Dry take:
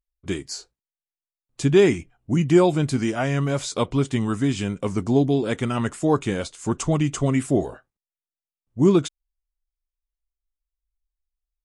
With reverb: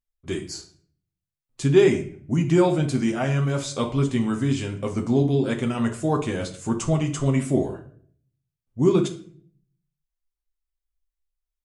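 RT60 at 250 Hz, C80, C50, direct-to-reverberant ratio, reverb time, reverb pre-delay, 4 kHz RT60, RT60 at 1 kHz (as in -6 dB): 0.70 s, 15.5 dB, 11.0 dB, 3.5 dB, 0.50 s, 8 ms, 0.40 s, 0.45 s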